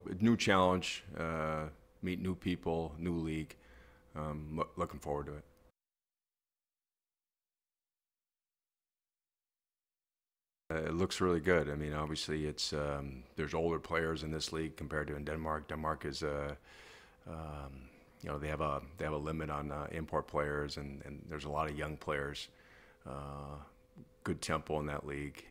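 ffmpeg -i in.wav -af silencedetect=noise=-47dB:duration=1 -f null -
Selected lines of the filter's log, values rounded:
silence_start: 5.40
silence_end: 10.70 | silence_duration: 5.30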